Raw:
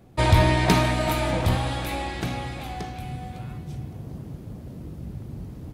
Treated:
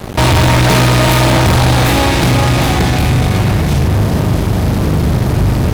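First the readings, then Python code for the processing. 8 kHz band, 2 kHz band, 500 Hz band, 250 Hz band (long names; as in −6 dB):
+17.5 dB, +13.5 dB, +13.0 dB, +15.0 dB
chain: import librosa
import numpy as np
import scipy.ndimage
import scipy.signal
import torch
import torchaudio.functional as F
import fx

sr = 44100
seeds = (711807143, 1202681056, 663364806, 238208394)

y = fx.bin_compress(x, sr, power=0.6)
y = fx.room_flutter(y, sr, wall_m=6.8, rt60_s=0.39)
y = fx.fuzz(y, sr, gain_db=25.0, gate_db=-35.0)
y = F.gain(torch.from_numpy(y), 5.5).numpy()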